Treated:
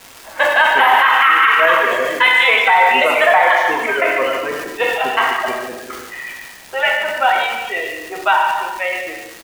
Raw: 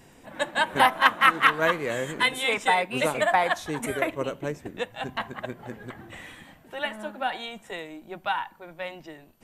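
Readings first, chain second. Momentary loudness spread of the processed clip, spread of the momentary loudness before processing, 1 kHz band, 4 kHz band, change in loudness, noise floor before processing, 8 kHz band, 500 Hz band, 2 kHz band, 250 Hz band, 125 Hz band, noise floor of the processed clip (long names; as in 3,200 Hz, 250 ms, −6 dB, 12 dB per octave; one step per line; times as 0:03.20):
17 LU, 21 LU, +11.5 dB, +10.0 dB, +11.5 dB, −54 dBFS, +6.0 dB, +10.5 dB, +13.0 dB, +2.5 dB, can't be measured, −39 dBFS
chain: sub-octave generator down 2 octaves, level −2 dB
noise reduction from a noise print of the clip's start 8 dB
low-pass that shuts in the quiet parts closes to 2,500 Hz, open at −18 dBFS
high-pass filter 650 Hz 12 dB per octave
reverb reduction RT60 1.9 s
flat-topped bell 6,400 Hz −14 dB
in parallel at +0.5 dB: downward compressor, threshold −33 dBFS, peak gain reduction 18.5 dB
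on the sum: surface crackle 420 per second −37 dBFS
on a send: single-tap delay 144 ms −10.5 dB
on the sum: reverb whose tail is shaped and stops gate 450 ms falling, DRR 0.5 dB
boost into a limiter +12 dB
level that may fall only so fast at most 39 dB per second
level −1.5 dB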